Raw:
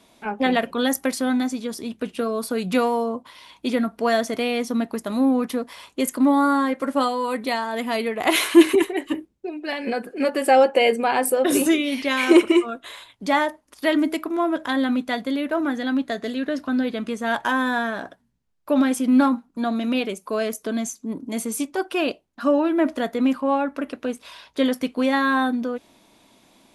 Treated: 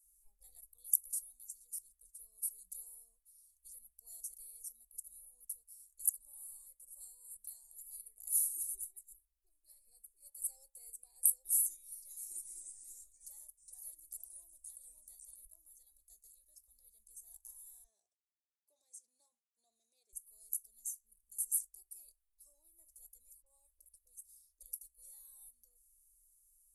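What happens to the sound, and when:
12.15–15.45 echoes that change speed 0.278 s, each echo -2 st, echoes 2
17.84–20.13 speaker cabinet 260–6300 Hz, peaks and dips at 380 Hz +9 dB, 720 Hz +4 dB, 1400 Hz -4 dB, 5100 Hz -5 dB
23.42–24.63 dispersion highs, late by 42 ms, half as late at 820 Hz
whole clip: inverse Chebyshev band-stop 120–3200 Hz, stop band 60 dB

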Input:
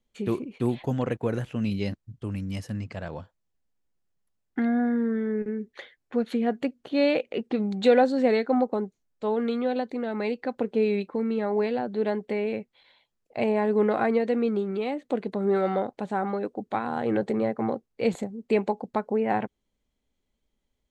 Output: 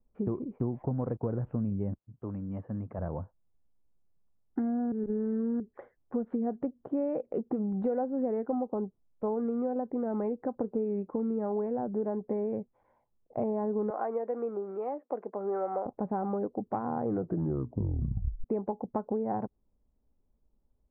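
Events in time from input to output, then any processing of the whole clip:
1.97–2.98 HPF 530 Hz -> 250 Hz 6 dB/oct
4.92–5.6 reverse
13.9–15.86 HPF 560 Hz
17.06 tape stop 1.38 s
whole clip: inverse Chebyshev low-pass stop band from 6300 Hz, stop band 80 dB; low shelf 130 Hz +8 dB; compressor 6:1, threshold -28 dBFS

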